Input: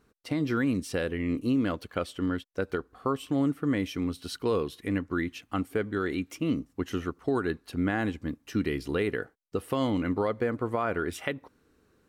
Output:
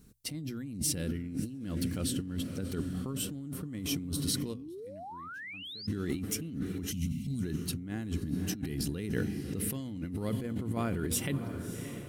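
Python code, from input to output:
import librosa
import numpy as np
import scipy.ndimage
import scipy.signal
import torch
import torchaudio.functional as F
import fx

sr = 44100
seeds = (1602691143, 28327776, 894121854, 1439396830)

p1 = x + fx.echo_diffused(x, sr, ms=625, feedback_pct=49, wet_db=-14, dry=0)
p2 = fx.spec_box(p1, sr, start_s=6.91, length_s=0.52, low_hz=270.0, high_hz=2000.0, gain_db=-24)
p3 = fx.curve_eq(p2, sr, hz=(180.0, 490.0, 1200.0, 10000.0), db=(0, -16, -20, 2))
p4 = fx.spec_paint(p3, sr, seeds[0], shape='rise', start_s=4.54, length_s=1.33, low_hz=230.0, high_hz=5200.0, level_db=-28.0)
p5 = fx.peak_eq(p4, sr, hz=64.0, db=-3.0, octaves=1.4)
p6 = fx.over_compress(p5, sr, threshold_db=-42.0, ratio=-1.0)
p7 = fx.hum_notches(p6, sr, base_hz=60, count=2)
y = F.gain(torch.from_numpy(p7), 6.0).numpy()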